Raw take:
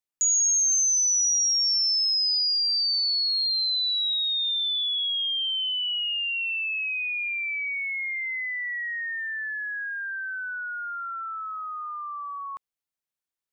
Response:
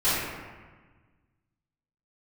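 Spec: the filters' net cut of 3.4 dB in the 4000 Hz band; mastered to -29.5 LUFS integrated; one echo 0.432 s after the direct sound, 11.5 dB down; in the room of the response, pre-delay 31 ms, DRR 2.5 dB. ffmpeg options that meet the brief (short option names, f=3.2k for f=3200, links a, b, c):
-filter_complex "[0:a]equalizer=f=4k:t=o:g=-4.5,aecho=1:1:432:0.266,asplit=2[a][b];[1:a]atrim=start_sample=2205,adelay=31[c];[b][c]afir=irnorm=-1:irlink=0,volume=-18dB[d];[a][d]amix=inputs=2:normalize=0,volume=-5dB"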